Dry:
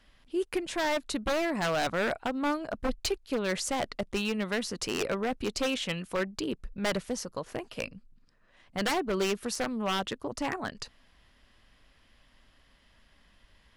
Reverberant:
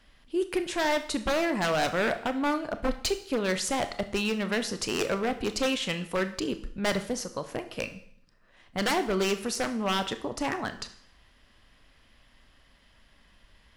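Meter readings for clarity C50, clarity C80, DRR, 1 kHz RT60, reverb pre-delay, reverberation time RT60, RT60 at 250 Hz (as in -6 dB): 13.0 dB, 16.0 dB, 9.0 dB, 0.65 s, 24 ms, 0.60 s, 0.55 s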